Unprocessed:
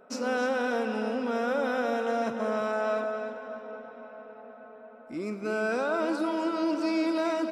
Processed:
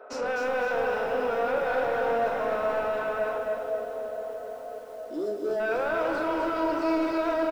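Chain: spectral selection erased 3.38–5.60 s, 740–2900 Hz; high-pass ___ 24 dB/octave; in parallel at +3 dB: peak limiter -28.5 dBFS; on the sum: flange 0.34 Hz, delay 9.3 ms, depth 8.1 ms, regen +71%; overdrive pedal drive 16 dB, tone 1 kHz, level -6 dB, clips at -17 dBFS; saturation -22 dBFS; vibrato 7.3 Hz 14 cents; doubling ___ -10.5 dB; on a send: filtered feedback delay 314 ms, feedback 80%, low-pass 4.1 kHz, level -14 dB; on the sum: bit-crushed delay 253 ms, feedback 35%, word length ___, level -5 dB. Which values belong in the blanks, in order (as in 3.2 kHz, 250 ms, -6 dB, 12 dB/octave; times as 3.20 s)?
330 Hz, 43 ms, 9-bit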